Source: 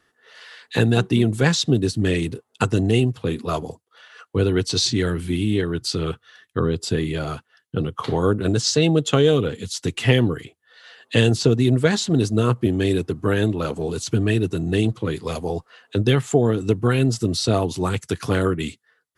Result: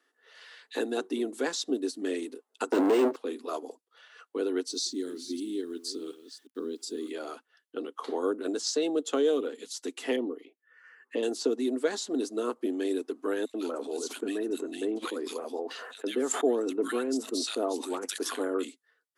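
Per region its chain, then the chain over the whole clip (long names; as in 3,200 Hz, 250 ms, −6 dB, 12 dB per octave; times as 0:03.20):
0:02.72–0:03.16: mid-hump overdrive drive 39 dB, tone 1,200 Hz, clips at −5.5 dBFS + linearly interpolated sample-rate reduction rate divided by 4×
0:04.69–0:07.11: delay that plays each chunk backwards 356 ms, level −13.5 dB + flat-topped bell 1,200 Hz −13.5 dB 2.8 octaves + bit-depth reduction 10 bits, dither none
0:10.16–0:11.23: high shelf with overshoot 2,600 Hz −7.5 dB, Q 1.5 + phaser swept by the level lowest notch 580 Hz, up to 1,600 Hz, full sweep at −23.5 dBFS
0:13.45–0:18.65: multiband delay without the direct sound highs, lows 90 ms, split 1,900 Hz + level that may fall only so fast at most 36 dB per second
whole clip: Chebyshev high-pass filter 260 Hz, order 5; dynamic equaliser 2,600 Hz, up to −8 dB, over −41 dBFS, Q 1; level −7.5 dB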